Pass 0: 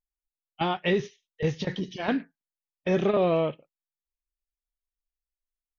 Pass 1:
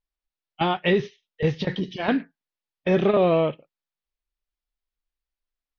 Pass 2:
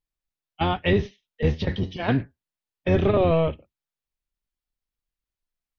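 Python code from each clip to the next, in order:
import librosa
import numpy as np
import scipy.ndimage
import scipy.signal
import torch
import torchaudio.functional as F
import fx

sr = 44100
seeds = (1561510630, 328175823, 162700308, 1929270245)

y1 = scipy.signal.sosfilt(scipy.signal.butter(4, 4900.0, 'lowpass', fs=sr, output='sos'), x)
y1 = F.gain(torch.from_numpy(y1), 4.0).numpy()
y2 = fx.octave_divider(y1, sr, octaves=1, level_db=1.0)
y2 = F.gain(torch.from_numpy(y2), -1.5).numpy()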